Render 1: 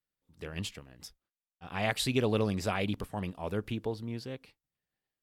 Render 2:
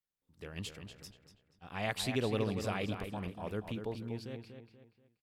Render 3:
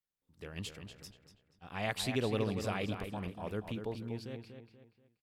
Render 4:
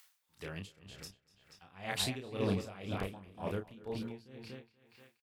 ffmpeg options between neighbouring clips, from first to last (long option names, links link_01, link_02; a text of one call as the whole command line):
ffmpeg -i in.wav -filter_complex "[0:a]asplit=2[link_01][link_02];[link_02]adelay=240,lowpass=frequency=4200:poles=1,volume=-7.5dB,asplit=2[link_03][link_04];[link_04]adelay=240,lowpass=frequency=4200:poles=1,volume=0.38,asplit=2[link_05][link_06];[link_06]adelay=240,lowpass=frequency=4200:poles=1,volume=0.38,asplit=2[link_07][link_08];[link_08]adelay=240,lowpass=frequency=4200:poles=1,volume=0.38[link_09];[link_01][link_03][link_05][link_07][link_09]amix=inputs=5:normalize=0,volume=-5dB" out.wav
ffmpeg -i in.wav -af anull out.wav
ffmpeg -i in.wav -filter_complex "[0:a]acrossover=split=780[link_01][link_02];[link_02]acompressor=mode=upward:threshold=-47dB:ratio=2.5[link_03];[link_01][link_03]amix=inputs=2:normalize=0,asplit=2[link_04][link_05];[link_05]adelay=31,volume=-4.5dB[link_06];[link_04][link_06]amix=inputs=2:normalize=0,aeval=exprs='val(0)*pow(10,-19*(0.5-0.5*cos(2*PI*2*n/s))/20)':channel_layout=same,volume=3dB" out.wav